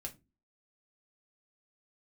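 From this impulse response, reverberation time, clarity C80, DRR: 0.25 s, 25.5 dB, 1.0 dB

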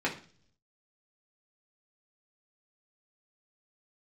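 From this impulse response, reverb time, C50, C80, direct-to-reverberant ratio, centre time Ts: 0.45 s, 11.0 dB, 16.0 dB, -4.0 dB, 16 ms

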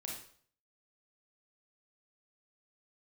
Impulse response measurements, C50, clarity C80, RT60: 2.5 dB, 7.5 dB, 0.55 s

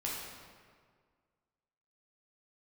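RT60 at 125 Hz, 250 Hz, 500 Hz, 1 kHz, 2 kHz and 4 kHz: 1.9, 1.9, 1.9, 1.8, 1.5, 1.2 s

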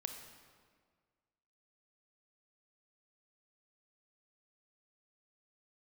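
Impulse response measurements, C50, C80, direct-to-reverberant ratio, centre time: 6.0 dB, 7.5 dB, 5.0 dB, 34 ms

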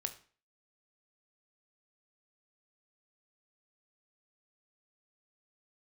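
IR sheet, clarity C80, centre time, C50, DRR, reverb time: 18.0 dB, 9 ms, 13.5 dB, 7.5 dB, 0.40 s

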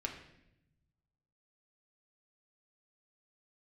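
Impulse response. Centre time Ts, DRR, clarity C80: 23 ms, 0.0 dB, 10.0 dB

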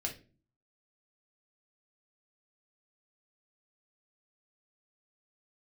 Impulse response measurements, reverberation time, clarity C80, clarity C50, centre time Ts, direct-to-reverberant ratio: not exponential, 17.5 dB, 10.0 dB, 15 ms, 0.0 dB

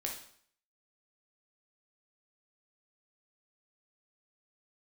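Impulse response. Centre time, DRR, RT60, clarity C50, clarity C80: 28 ms, -0.5 dB, 0.60 s, 5.5 dB, 10.0 dB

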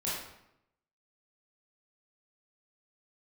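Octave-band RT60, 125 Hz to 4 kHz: 1.0, 0.90, 0.85, 0.80, 0.70, 0.60 s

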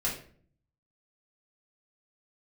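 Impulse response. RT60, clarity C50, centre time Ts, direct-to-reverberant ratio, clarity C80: 0.50 s, 6.0 dB, 30 ms, -6.0 dB, 10.5 dB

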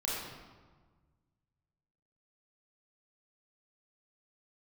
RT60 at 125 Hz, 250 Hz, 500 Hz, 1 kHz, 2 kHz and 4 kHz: 2.4, 1.8, 1.5, 1.5, 1.1, 0.95 s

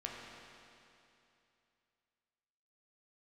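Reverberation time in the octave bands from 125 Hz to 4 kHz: 2.9, 2.8, 2.8, 2.8, 2.8, 2.7 s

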